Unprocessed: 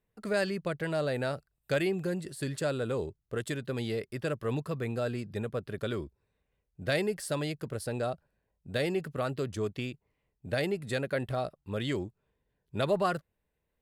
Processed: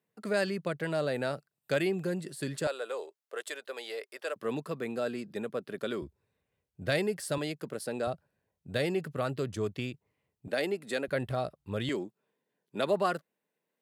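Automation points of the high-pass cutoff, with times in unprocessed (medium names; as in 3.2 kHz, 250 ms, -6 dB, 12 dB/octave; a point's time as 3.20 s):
high-pass 24 dB/octave
140 Hz
from 2.67 s 490 Hz
from 4.36 s 180 Hz
from 6.02 s 73 Hz
from 7.38 s 170 Hz
from 8.07 s 79 Hz
from 10.48 s 220 Hz
from 11.08 s 55 Hz
from 11.89 s 190 Hz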